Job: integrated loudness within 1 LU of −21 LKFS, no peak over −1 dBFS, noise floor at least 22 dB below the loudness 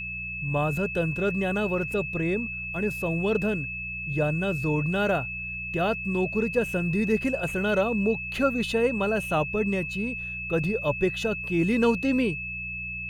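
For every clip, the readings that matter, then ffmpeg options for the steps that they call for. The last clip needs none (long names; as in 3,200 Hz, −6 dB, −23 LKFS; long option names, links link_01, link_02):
mains hum 60 Hz; hum harmonics up to 180 Hz; level of the hum −40 dBFS; interfering tone 2,600 Hz; level of the tone −32 dBFS; integrated loudness −26.5 LKFS; sample peak −10.5 dBFS; target loudness −21.0 LKFS
→ -af "bandreject=frequency=60:width_type=h:width=4,bandreject=frequency=120:width_type=h:width=4,bandreject=frequency=180:width_type=h:width=4"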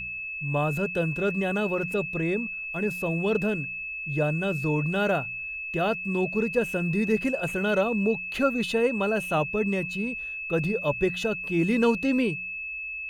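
mains hum none found; interfering tone 2,600 Hz; level of the tone −32 dBFS
→ -af "bandreject=frequency=2600:width=30"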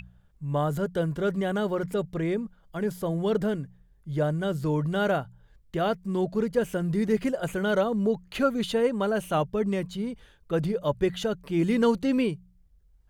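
interfering tone none found; integrated loudness −27.5 LKFS; sample peak −11.0 dBFS; target loudness −21.0 LKFS
→ -af "volume=6.5dB"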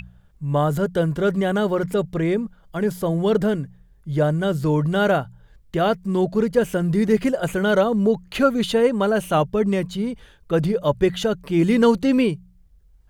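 integrated loudness −21.0 LKFS; sample peak −4.5 dBFS; background noise floor −54 dBFS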